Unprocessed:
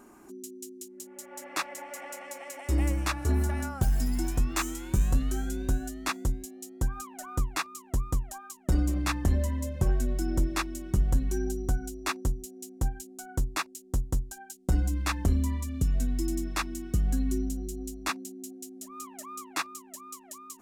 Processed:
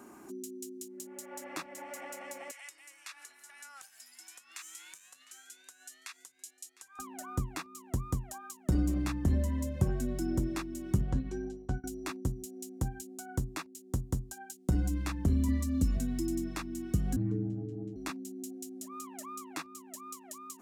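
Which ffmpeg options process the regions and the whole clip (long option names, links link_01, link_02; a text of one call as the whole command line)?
ffmpeg -i in.wav -filter_complex "[0:a]asettb=1/sr,asplit=3[link_01][link_02][link_03];[link_01]atrim=end=2.514[link_04];[link_02]atrim=start=2.51:end=6.99,asetpts=PTS-STARTPTS,afade=type=in:duration=0.004:curve=qsin,afade=type=out:start_time=4.476:duration=0.004:curve=qsin,acompressor=threshold=-36dB:ratio=5:attack=3.2:release=140:knee=1:detection=peak,asuperpass=centerf=5100:order=4:qfactor=0.5,aecho=1:1:705:0.0891,atrim=end_sample=197568[link_05];[link_03]atrim=start=6.986[link_06];[link_04][link_05]acrossfade=duration=0.004:curve1=hsin:curve2=qsin[link_07];[link_07][link_06]acrossfade=duration=0.004:curve1=qsin:curve2=hsin,asettb=1/sr,asplit=3[link_08][link_09][link_10];[link_08]atrim=end=11.014[link_11];[link_09]atrim=start=11.01:end=11.84,asetpts=PTS-STARTPTS,afade=type=in:duration=0.004:curve=qsin,afade=type=out:start_time=0.826:duration=0.004:curve=qsin,lowpass=4000,agate=range=-33dB:threshold=-24dB:ratio=3:release=100:detection=peak[link_12];[link_10]atrim=start=11.836[link_13];[link_11][link_12]acrossfade=duration=0.004:curve1=hsin:curve2=qsin[link_14];[link_14][link_13]acrossfade=duration=0.004:curve1=qsin:curve2=hsin,asettb=1/sr,asplit=3[link_15][link_16][link_17];[link_15]atrim=end=15.484[link_18];[link_16]atrim=start=15.48:end=15.97,asetpts=PTS-STARTPTS,afade=type=in:duration=0.004:curve=qsin,afade=type=out:start_time=0.486:duration=0.004:curve=qsin,equalizer=frequency=3900:width_type=o:width=0.77:gain=3,bandreject=frequency=3400:width=13,aecho=1:1:3.6:0.96,atrim=end_sample=21609[link_19];[link_17]atrim=start=15.966[link_20];[link_18][link_19]acrossfade=duration=0.004:curve1=hsin:curve2=qsin[link_21];[link_21][link_20]acrossfade=duration=0.004:curve1=qsin:curve2=hsin,asettb=1/sr,asplit=3[link_22][link_23][link_24];[link_22]atrim=end=17.164[link_25];[link_23]atrim=start=17.16:end=17.96,asetpts=PTS-STARTPTS,afade=type=in:duration=0.004:curve=qsin,afade=type=out:start_time=0.796:duration=0.004:curve=qsin,lowpass=1400,aeval=exprs='val(0)*sin(2*PI*63*n/s)':channel_layout=same[link_26];[link_24]atrim=start=17.956[link_27];[link_25][link_26]acrossfade=duration=0.004:curve1=hsin:curve2=qsin[link_28];[link_28][link_27]acrossfade=duration=0.004:curve1=qsin:curve2=hsin,highpass=85,acrossover=split=340[link_29][link_30];[link_30]acompressor=threshold=-44dB:ratio=3[link_31];[link_29][link_31]amix=inputs=2:normalize=0,volume=1.5dB" out.wav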